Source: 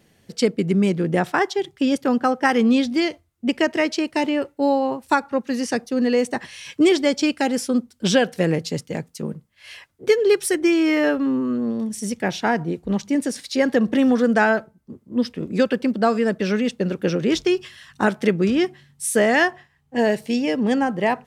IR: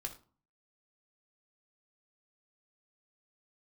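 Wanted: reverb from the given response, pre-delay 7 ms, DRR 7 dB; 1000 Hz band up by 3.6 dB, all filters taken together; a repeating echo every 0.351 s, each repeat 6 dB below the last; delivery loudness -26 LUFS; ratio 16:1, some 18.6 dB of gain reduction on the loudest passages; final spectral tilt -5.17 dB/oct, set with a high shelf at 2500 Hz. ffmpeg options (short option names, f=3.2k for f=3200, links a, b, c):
-filter_complex "[0:a]equalizer=f=1k:t=o:g=6,highshelf=f=2.5k:g=-7.5,acompressor=threshold=-30dB:ratio=16,aecho=1:1:351|702|1053|1404|1755|2106:0.501|0.251|0.125|0.0626|0.0313|0.0157,asplit=2[a][b];[1:a]atrim=start_sample=2205,adelay=7[c];[b][c]afir=irnorm=-1:irlink=0,volume=-5.5dB[d];[a][d]amix=inputs=2:normalize=0,volume=7.5dB"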